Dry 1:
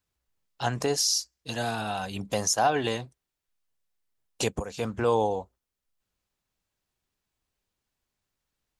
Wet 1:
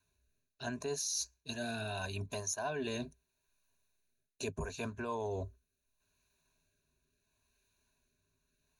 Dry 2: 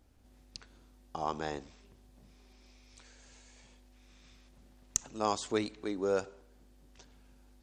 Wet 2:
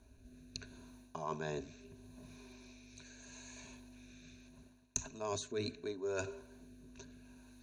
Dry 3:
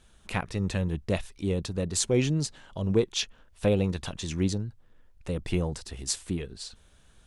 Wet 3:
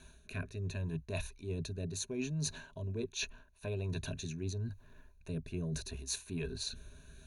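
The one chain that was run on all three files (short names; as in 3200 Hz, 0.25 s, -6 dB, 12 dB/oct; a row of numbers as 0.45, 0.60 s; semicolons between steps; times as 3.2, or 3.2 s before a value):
ripple EQ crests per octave 1.5, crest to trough 14 dB; rotary speaker horn 0.75 Hz; notch 530 Hz, Q 12; reverse; compressor 6:1, threshold -41 dBFS; reverse; gain +4.5 dB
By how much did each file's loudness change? -11.0, -8.0, -10.0 LU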